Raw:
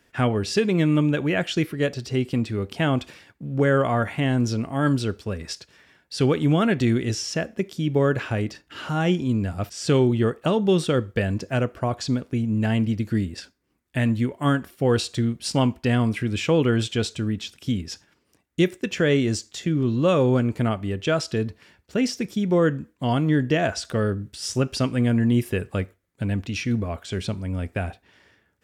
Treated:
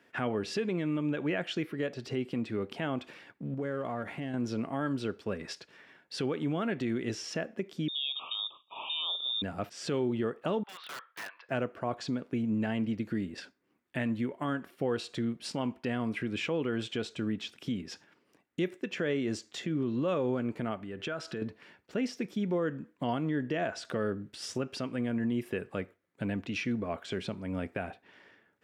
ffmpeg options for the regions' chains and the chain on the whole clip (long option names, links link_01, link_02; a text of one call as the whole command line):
ffmpeg -i in.wav -filter_complex "[0:a]asettb=1/sr,asplit=3[link_01][link_02][link_03];[link_01]atrim=end=3.544[link_04];[link_02]atrim=start=3.54:end=4.34,asetpts=PTS-STARTPTS,afade=type=in:duration=0.004:curve=qsin,afade=type=out:start_time=0.796:duration=0.004:curve=qsin,aeval=exprs='if(lt(val(0),0),0.708*val(0),val(0))':channel_layout=same,equalizer=frequency=1700:width=0.33:gain=-5.5,acompressor=threshold=-30dB:ratio=5:attack=3.2:release=140:knee=1:detection=peak[link_05];[link_03]atrim=start=4.336[link_06];[link_04][link_05]acrossfade=duration=0.004:curve1=hsin:curve2=qsin[link_07];[link_07][link_06]acrossfade=duration=0.004:curve1=qsin:curve2=hsin,asettb=1/sr,asplit=3[link_08][link_09][link_10];[link_08]atrim=end=7.884[link_11];[link_09]atrim=start=7.88:end=9.42,asetpts=PTS-STARTPTS,afade=type=in:duration=0.004:curve=qsin,afade=type=out:start_time=1.536:duration=0.004:curve=qsin,lowpass=frequency=3200:width_type=q:width=0.5098,lowpass=frequency=3200:width_type=q:width=0.6013,lowpass=frequency=3200:width_type=q:width=0.9,lowpass=frequency=3200:width_type=q:width=2.563,afreqshift=-3800,asuperstop=centerf=1800:order=12:qfactor=1.4[link_12];[link_10]atrim=start=9.416[link_13];[link_11][link_12]acrossfade=duration=0.004:curve1=hsin:curve2=qsin[link_14];[link_14][link_13]acrossfade=duration=0.004:curve1=qsin:curve2=hsin,asettb=1/sr,asplit=3[link_15][link_16][link_17];[link_15]atrim=end=10.634[link_18];[link_16]atrim=start=10.63:end=11.49,asetpts=PTS-STARTPTS,afade=type=in:duration=0.004:curve=qsin,afade=type=out:start_time=0.856:duration=0.004:curve=qsin,asuperpass=centerf=2100:order=8:qfactor=0.61,highshelf=frequency=3100:gain=-10.5,aeval=exprs='(mod(42.2*val(0)+1,2)-1)/42.2':channel_layout=same[link_19];[link_17]atrim=start=11.486[link_20];[link_18][link_19]acrossfade=duration=0.004:curve1=hsin:curve2=qsin[link_21];[link_21][link_20]acrossfade=duration=0.004:curve1=qsin:curve2=hsin,asettb=1/sr,asplit=3[link_22][link_23][link_24];[link_22]atrim=end=20.834[link_25];[link_23]atrim=start=20.83:end=21.42,asetpts=PTS-STARTPTS,afade=type=in:duration=0.004:curve=qsin,afade=type=out:start_time=0.586:duration=0.004:curve=qsin,equalizer=frequency=1500:width=4.8:gain=7,acompressor=threshold=-30dB:ratio=16:attack=3.2:release=140:knee=1:detection=peak[link_26];[link_24]atrim=start=21.416[link_27];[link_25][link_26]acrossfade=duration=0.004:curve1=hsin:curve2=qsin[link_28];[link_28][link_27]acrossfade=duration=0.004:curve1=qsin:curve2=hsin,alimiter=limit=-21dB:level=0:latency=1:release=314,highpass=180,bass=frequency=250:gain=-1,treble=frequency=4000:gain=-11" out.wav